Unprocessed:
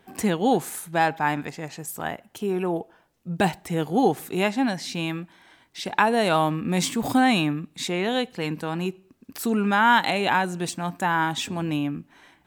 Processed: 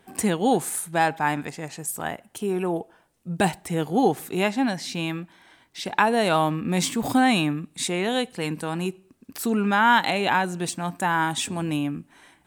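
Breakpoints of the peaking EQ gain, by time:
peaking EQ 9.1 kHz 0.5 oct
3.50 s +8.5 dB
3.93 s +2 dB
7.16 s +2 dB
7.81 s +12 dB
8.87 s +12 dB
9.53 s +0.5 dB
10.43 s +0.5 dB
11.31 s +11.5 dB

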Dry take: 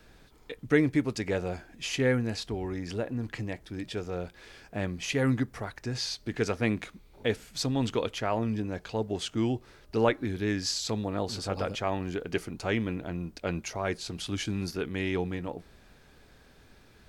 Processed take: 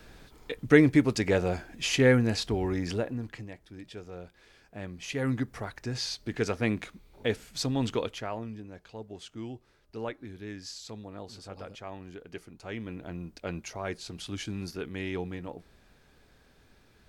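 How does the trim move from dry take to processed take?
2.87 s +4.5 dB
3.50 s -8.5 dB
4.76 s -8.5 dB
5.55 s -0.5 dB
7.96 s -0.5 dB
8.60 s -11.5 dB
12.60 s -11.5 dB
13.09 s -4 dB

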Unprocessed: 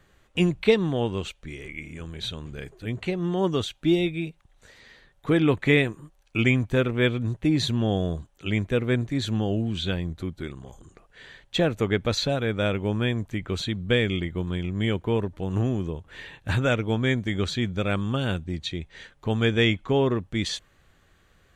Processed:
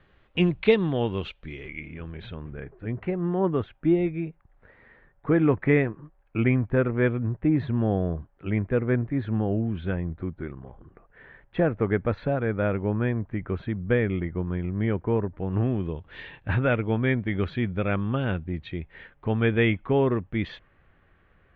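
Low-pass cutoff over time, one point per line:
low-pass 24 dB/octave
1.57 s 3.5 kHz
2.63 s 1.9 kHz
15.28 s 1.9 kHz
16.20 s 3.9 kHz
16.50 s 2.5 kHz

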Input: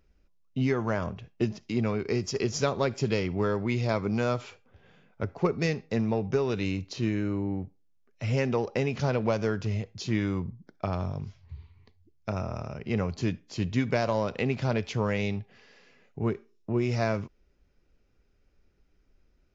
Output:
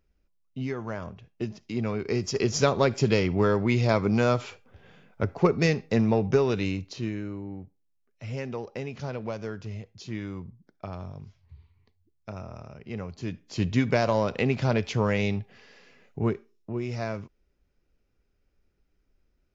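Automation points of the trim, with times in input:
1.29 s -5.5 dB
2.63 s +4.5 dB
6.38 s +4.5 dB
7.41 s -7 dB
13.18 s -7 dB
13.60 s +3 dB
16.22 s +3 dB
16.75 s -4.5 dB

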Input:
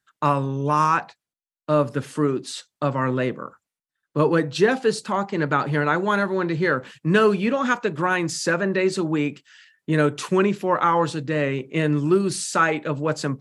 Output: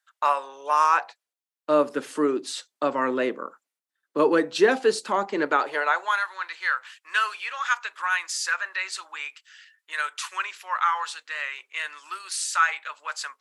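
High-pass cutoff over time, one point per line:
high-pass 24 dB/octave
0.67 s 620 Hz
1.71 s 270 Hz
5.40 s 270 Hz
6.24 s 1.1 kHz

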